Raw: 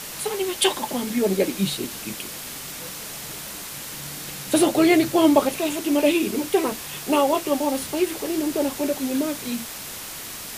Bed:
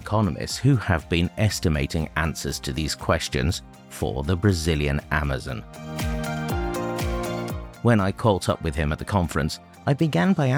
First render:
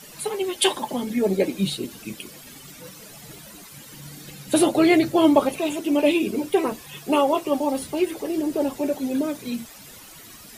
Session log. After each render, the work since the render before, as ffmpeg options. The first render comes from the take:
ffmpeg -i in.wav -af "afftdn=noise_reduction=13:noise_floor=-35" out.wav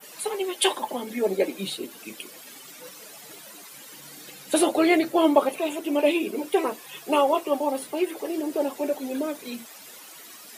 ffmpeg -i in.wav -af "highpass=360,adynamicequalizer=threshold=0.00562:dfrequency=5600:dqfactor=0.72:tfrequency=5600:tqfactor=0.72:attack=5:release=100:ratio=0.375:range=3:mode=cutabove:tftype=bell" out.wav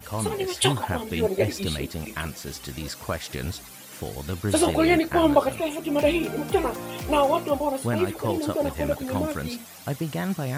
ffmpeg -i in.wav -i bed.wav -filter_complex "[1:a]volume=-8dB[link_01];[0:a][link_01]amix=inputs=2:normalize=0" out.wav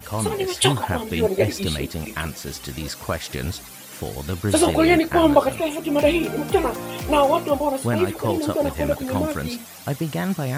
ffmpeg -i in.wav -af "volume=3.5dB" out.wav

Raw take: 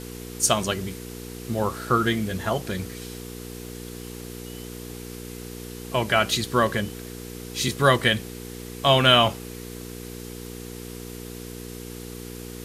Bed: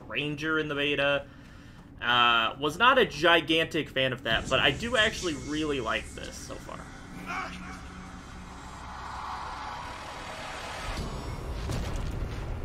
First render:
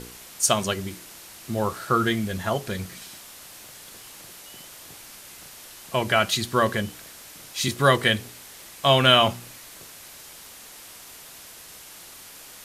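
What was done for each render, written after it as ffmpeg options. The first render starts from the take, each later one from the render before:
ffmpeg -i in.wav -af "bandreject=frequency=60:width_type=h:width=4,bandreject=frequency=120:width_type=h:width=4,bandreject=frequency=180:width_type=h:width=4,bandreject=frequency=240:width_type=h:width=4,bandreject=frequency=300:width_type=h:width=4,bandreject=frequency=360:width_type=h:width=4,bandreject=frequency=420:width_type=h:width=4,bandreject=frequency=480:width_type=h:width=4" out.wav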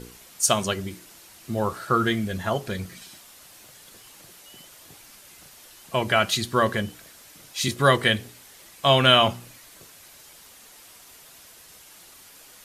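ffmpeg -i in.wav -af "afftdn=noise_reduction=6:noise_floor=-45" out.wav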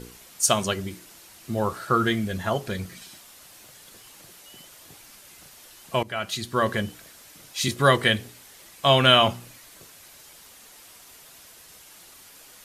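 ffmpeg -i in.wav -filter_complex "[0:a]asplit=2[link_01][link_02];[link_01]atrim=end=6.03,asetpts=PTS-STARTPTS,afade=type=out:start_time=6.026:duration=0.004:curve=hsin:silence=0.177828[link_03];[link_02]atrim=start=6.03,asetpts=PTS-STARTPTS,afade=type=in:duration=0.77:silence=0.177828[link_04];[link_03][link_04]concat=n=2:v=0:a=1" out.wav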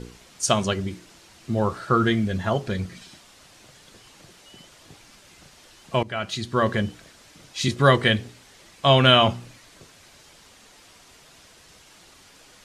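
ffmpeg -i in.wav -af "lowpass=6800,lowshelf=frequency=380:gain=5" out.wav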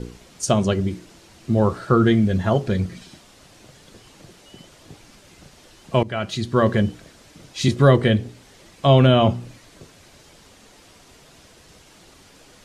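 ffmpeg -i in.wav -filter_complex "[0:a]acrossover=split=650[link_01][link_02];[link_01]acontrast=57[link_03];[link_02]alimiter=limit=-13.5dB:level=0:latency=1:release=399[link_04];[link_03][link_04]amix=inputs=2:normalize=0" out.wav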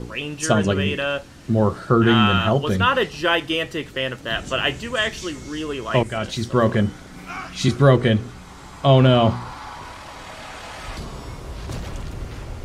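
ffmpeg -i in.wav -i bed.wav -filter_complex "[1:a]volume=2dB[link_01];[0:a][link_01]amix=inputs=2:normalize=0" out.wav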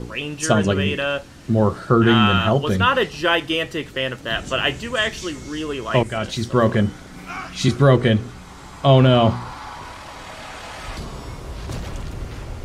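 ffmpeg -i in.wav -af "volume=1dB,alimiter=limit=-3dB:level=0:latency=1" out.wav

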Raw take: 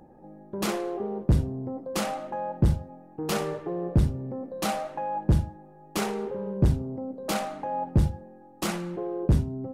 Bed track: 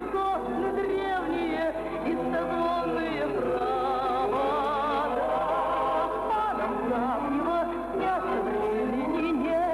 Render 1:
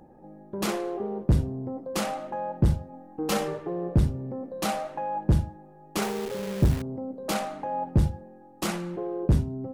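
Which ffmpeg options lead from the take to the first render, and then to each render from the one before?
ffmpeg -i in.wav -filter_complex "[0:a]asettb=1/sr,asplit=3[link_01][link_02][link_03];[link_01]atrim=end=2.934[link_04];[link_02]atrim=start=2.93:end=3.48,asetpts=PTS-STARTPTS,afade=type=in:duration=0.004:curve=qsin,afade=type=out:start_time=0.546:duration=0.004:curve=qsin,aecho=1:1:3.8:0.65,atrim=end_sample=24255[link_05];[link_03]atrim=start=3.476[link_06];[link_04][link_05]acrossfade=duration=0.004:curve1=hsin:curve2=qsin[link_07];[link_07][link_06]acrossfade=duration=0.004:curve1=qsin:curve2=hsin,asettb=1/sr,asplit=3[link_08][link_09][link_10];[link_08]atrim=end=6.024[link_11];[link_09]atrim=start=6.02:end=6.82,asetpts=PTS-STARTPTS,afade=type=in:duration=0.004:curve=qsin,afade=type=out:start_time=0.796:duration=0.004:curve=qsin,acrusher=bits=7:dc=4:mix=0:aa=0.000001[link_12];[link_10]atrim=start=6.816[link_13];[link_11][link_12]acrossfade=duration=0.004:curve1=hsin:curve2=qsin[link_14];[link_14][link_13]acrossfade=duration=0.004:curve1=qsin:curve2=hsin" out.wav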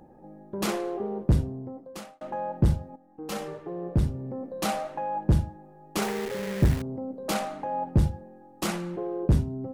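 ffmpeg -i in.wav -filter_complex "[0:a]asettb=1/sr,asplit=3[link_01][link_02][link_03];[link_01]atrim=end=6.084[link_04];[link_02]atrim=start=6.08:end=6.74,asetpts=PTS-STARTPTS,afade=type=in:duration=0.004:curve=qsin,afade=type=out:start_time=0.656:duration=0.004:curve=qsin,equalizer=frequency=1900:width_type=o:width=0.57:gain=7.5[link_05];[link_03]atrim=start=6.736[link_06];[link_04][link_05]acrossfade=duration=0.004:curve1=hsin:curve2=qsin[link_07];[link_07][link_06]acrossfade=duration=0.004:curve1=qsin:curve2=hsin,asplit=3[link_08][link_09][link_10];[link_08]atrim=end=2.21,asetpts=PTS-STARTPTS,afade=type=out:start_time=1.31:duration=0.9[link_11];[link_09]atrim=start=2.21:end=2.96,asetpts=PTS-STARTPTS,afade=type=in:duration=0.004:curve=hsin,afade=type=out:start_time=0.746:duration=0.004:curve=hsin:silence=0.237137[link_12];[link_10]atrim=start=2.96,asetpts=PTS-STARTPTS,afade=type=in:duration=1.49:silence=0.237137[link_13];[link_11][link_12][link_13]concat=n=3:v=0:a=1" out.wav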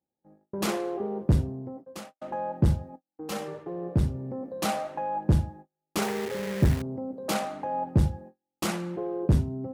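ffmpeg -i in.wav -af "highpass=frequency=51:width=0.5412,highpass=frequency=51:width=1.3066,agate=range=-37dB:threshold=-44dB:ratio=16:detection=peak" out.wav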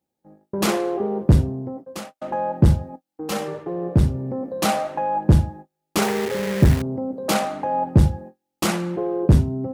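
ffmpeg -i in.wav -af "volume=7.5dB,alimiter=limit=-2dB:level=0:latency=1" out.wav

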